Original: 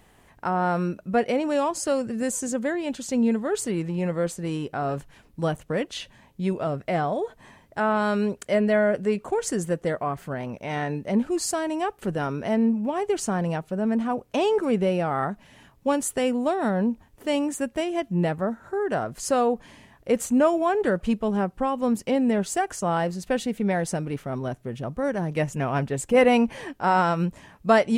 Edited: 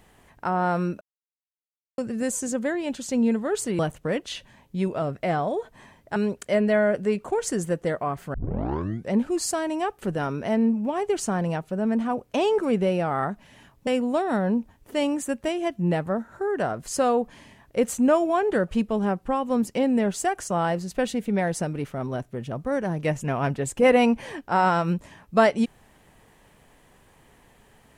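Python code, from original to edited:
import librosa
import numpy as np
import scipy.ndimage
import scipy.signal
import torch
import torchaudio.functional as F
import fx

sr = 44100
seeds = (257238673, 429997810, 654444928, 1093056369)

y = fx.edit(x, sr, fx.silence(start_s=1.01, length_s=0.97),
    fx.cut(start_s=3.79, length_s=1.65),
    fx.cut(start_s=7.81, length_s=0.35),
    fx.tape_start(start_s=10.34, length_s=0.79),
    fx.cut(start_s=15.87, length_s=0.32), tone=tone)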